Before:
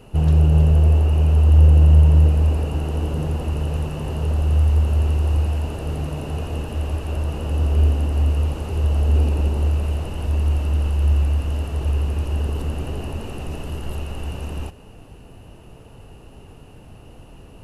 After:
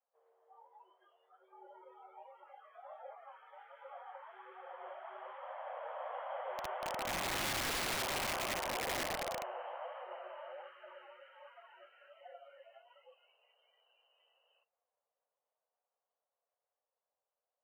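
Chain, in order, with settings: Doppler pass-by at 7.88 s, 13 m/s, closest 8.6 m; mistuned SSB +300 Hz 200–2200 Hz; flange 1.3 Hz, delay 3.4 ms, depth 6.9 ms, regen +65%; integer overflow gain 36 dB; spectral noise reduction 23 dB; trim +4.5 dB

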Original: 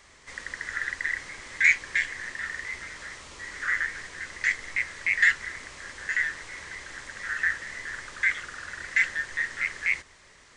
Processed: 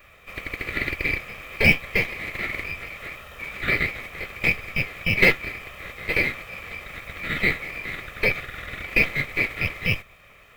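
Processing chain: comb filter that takes the minimum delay 1.6 ms; formant shift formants +3 st; high-order bell 6.7 kHz -15.5 dB; trim +6.5 dB

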